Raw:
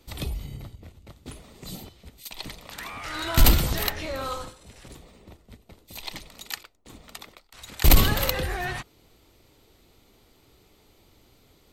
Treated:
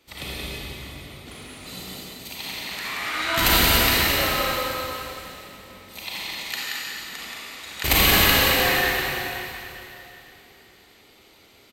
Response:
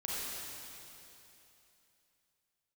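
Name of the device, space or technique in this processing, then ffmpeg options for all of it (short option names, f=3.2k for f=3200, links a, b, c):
stadium PA: -filter_complex "[0:a]highpass=f=220:p=1,equalizer=f=2.2k:t=o:w=1.6:g=7,aecho=1:1:177.8|218.7:0.562|0.355[a];[1:a]atrim=start_sample=2205[b];[a][b]afir=irnorm=-1:irlink=0"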